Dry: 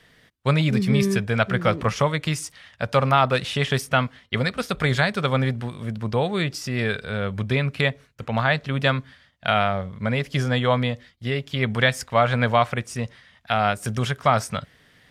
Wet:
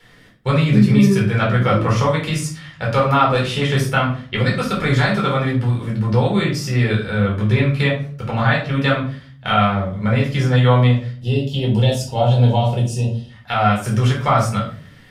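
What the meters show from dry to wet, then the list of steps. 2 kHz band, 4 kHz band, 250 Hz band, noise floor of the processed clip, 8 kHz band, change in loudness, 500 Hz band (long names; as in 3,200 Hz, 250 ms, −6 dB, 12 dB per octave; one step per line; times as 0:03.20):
+2.0 dB, +2.0 dB, +7.5 dB, −43 dBFS, +3.0 dB, +5.5 dB, +3.5 dB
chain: gain on a spectral selection 0:11.13–0:13.30, 970–2,500 Hz −19 dB
in parallel at 0 dB: downward compressor, threshold −29 dBFS, peak gain reduction 15.5 dB
on the sum: pitch vibrato 2.3 Hz 15 cents
rectangular room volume 390 cubic metres, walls furnished, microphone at 4.3 metres
level −6 dB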